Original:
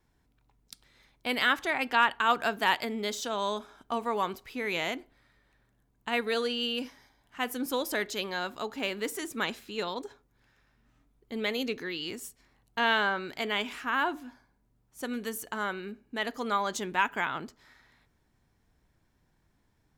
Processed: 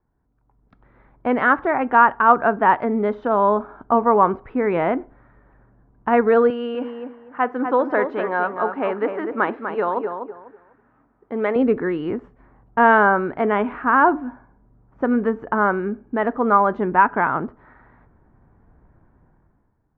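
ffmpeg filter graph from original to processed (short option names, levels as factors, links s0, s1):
-filter_complex "[0:a]asettb=1/sr,asplit=3[s0][s1][s2];[s0]atrim=end=6.504[s3];[s1]atrim=start=6.5:end=11.56,asetpts=PTS-STARTPTS,afade=t=in:d=0.004:c=qsin,afade=t=out:st=5.056:d=0.004:c=qsin,highpass=f=530:p=1,asplit=2[s4][s5];[s5]adelay=247,lowpass=f=2000:p=1,volume=0.473,asplit=2[s6][s7];[s7]adelay=247,lowpass=f=2000:p=1,volume=0.24,asplit=2[s8][s9];[s9]adelay=247,lowpass=f=2000:p=1,volume=0.24[s10];[s4][s6][s8][s10]amix=inputs=4:normalize=0,atrim=end_sample=223146[s11];[s2]atrim=start=11.556[s12];[s3][s11]acrossfade=d=0.004:c1=hsin:c2=qsin[s13];[s13][s12]acrossfade=d=0.004:c1=qsin:c2=hsin,lowpass=f=1400:w=0.5412,lowpass=f=1400:w=1.3066,dynaudnorm=f=130:g=11:m=6.31"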